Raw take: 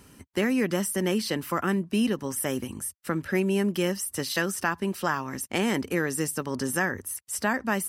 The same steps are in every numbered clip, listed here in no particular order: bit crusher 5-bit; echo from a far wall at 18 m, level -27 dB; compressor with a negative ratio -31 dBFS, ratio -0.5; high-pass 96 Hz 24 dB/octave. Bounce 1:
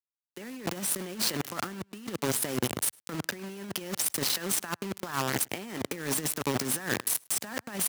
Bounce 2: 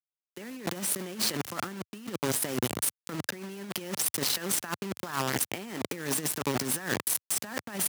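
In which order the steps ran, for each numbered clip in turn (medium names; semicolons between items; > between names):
bit crusher > high-pass > compressor with a negative ratio > echo from a far wall; echo from a far wall > bit crusher > compressor with a negative ratio > high-pass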